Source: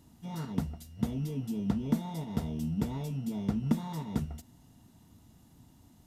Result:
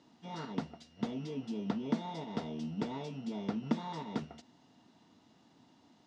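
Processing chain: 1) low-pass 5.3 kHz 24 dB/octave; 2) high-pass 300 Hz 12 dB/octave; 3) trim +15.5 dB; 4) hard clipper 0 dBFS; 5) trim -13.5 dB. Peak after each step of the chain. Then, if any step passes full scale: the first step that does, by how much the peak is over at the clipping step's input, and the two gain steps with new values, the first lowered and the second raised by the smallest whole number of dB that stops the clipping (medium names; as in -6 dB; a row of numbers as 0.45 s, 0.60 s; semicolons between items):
-14.5 dBFS, -20.5 dBFS, -5.0 dBFS, -5.0 dBFS, -18.5 dBFS; nothing clips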